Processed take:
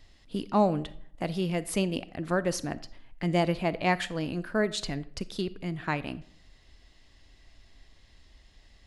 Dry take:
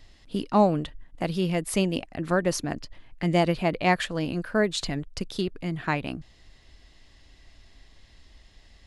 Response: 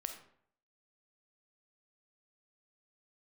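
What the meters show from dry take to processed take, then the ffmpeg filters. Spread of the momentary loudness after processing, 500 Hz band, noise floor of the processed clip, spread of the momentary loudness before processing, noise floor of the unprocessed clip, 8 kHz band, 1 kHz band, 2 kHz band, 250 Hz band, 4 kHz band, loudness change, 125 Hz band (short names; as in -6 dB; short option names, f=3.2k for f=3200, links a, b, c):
11 LU, -3.5 dB, -59 dBFS, 11 LU, -56 dBFS, -3.5 dB, -3.5 dB, -3.5 dB, -3.5 dB, -3.5 dB, -3.5 dB, -3.5 dB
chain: -filter_complex "[0:a]asplit=2[a][b];[1:a]atrim=start_sample=2205[c];[b][c]afir=irnorm=-1:irlink=0,volume=-5dB[d];[a][d]amix=inputs=2:normalize=0,volume=-6.5dB"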